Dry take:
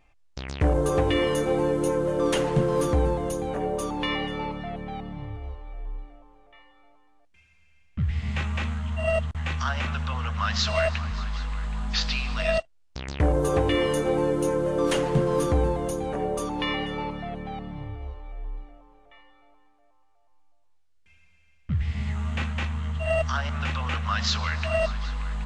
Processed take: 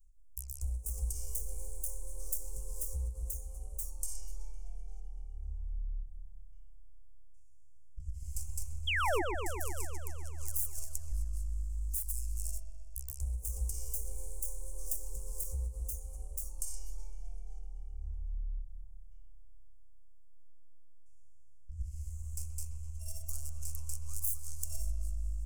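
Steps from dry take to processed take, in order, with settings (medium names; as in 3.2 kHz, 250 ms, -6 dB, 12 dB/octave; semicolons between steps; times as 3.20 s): tracing distortion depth 0.46 ms; inverse Chebyshev band-stop 100–4000 Hz, stop band 40 dB; 7.99–8.73 s: comb 4.7 ms, depth 92%; compression 10:1, threshold -35 dBFS, peak gain reduction 11.5 dB; 8.87–9.22 s: painted sound fall 310–3500 Hz -36 dBFS; on a send: feedback echo behind a low-pass 127 ms, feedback 73%, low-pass 2.8 kHz, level -6 dB; on the sum: endings held to a fixed fall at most 190 dB/s; trim +4 dB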